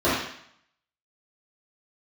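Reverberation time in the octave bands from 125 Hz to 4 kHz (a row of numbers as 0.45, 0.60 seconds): 0.65, 0.60, 0.65, 0.70, 0.70, 0.70 seconds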